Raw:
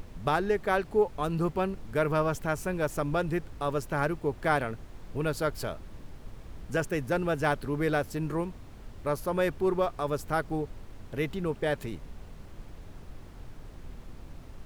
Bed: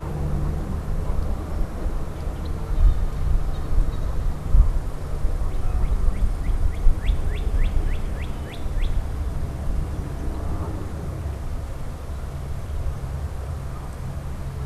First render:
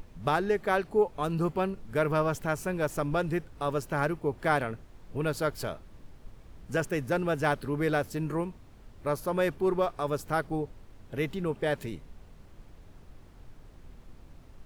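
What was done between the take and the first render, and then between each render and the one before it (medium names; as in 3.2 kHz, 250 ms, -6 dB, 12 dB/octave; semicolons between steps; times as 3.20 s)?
noise print and reduce 6 dB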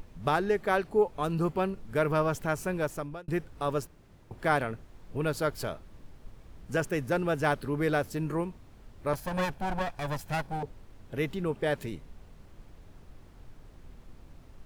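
2.77–3.28 s: fade out; 3.87–4.31 s: room tone; 9.13–10.63 s: comb filter that takes the minimum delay 1.2 ms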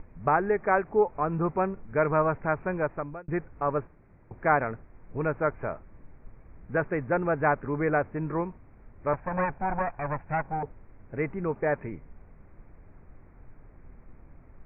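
steep low-pass 2.4 kHz 96 dB/octave; dynamic bell 940 Hz, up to +5 dB, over -42 dBFS, Q 0.92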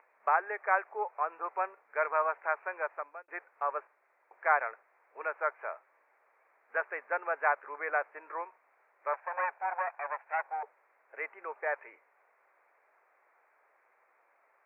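Bessel high-pass 900 Hz, order 6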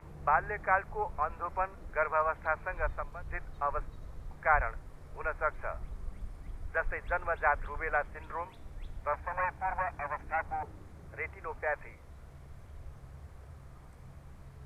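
add bed -20.5 dB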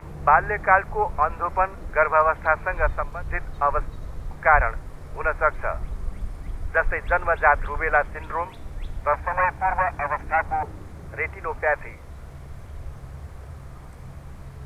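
trim +11 dB; peak limiter -3 dBFS, peak gain reduction 2.5 dB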